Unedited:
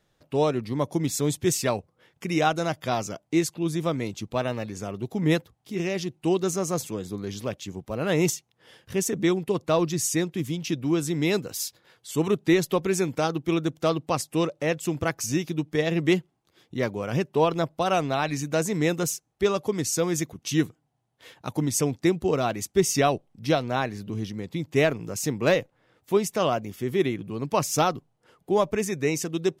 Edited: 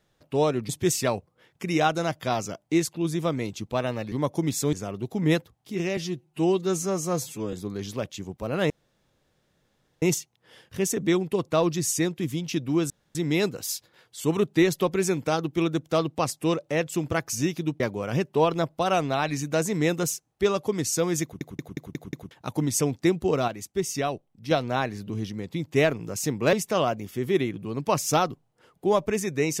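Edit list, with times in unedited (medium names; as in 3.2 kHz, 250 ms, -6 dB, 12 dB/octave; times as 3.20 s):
0.69–1.30 s: move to 4.73 s
5.97–7.01 s: stretch 1.5×
8.18 s: insert room tone 1.32 s
11.06 s: insert room tone 0.25 s
15.71–16.80 s: delete
20.23 s: stutter in place 0.18 s, 6 plays
22.48–23.51 s: gain -6 dB
25.53–26.18 s: delete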